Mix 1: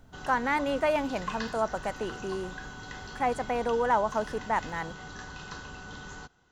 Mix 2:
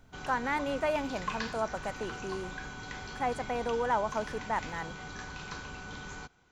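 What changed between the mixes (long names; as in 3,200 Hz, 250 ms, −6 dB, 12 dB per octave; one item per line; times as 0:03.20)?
speech −4.0 dB
background: remove Butterworth band-reject 2,300 Hz, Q 6.4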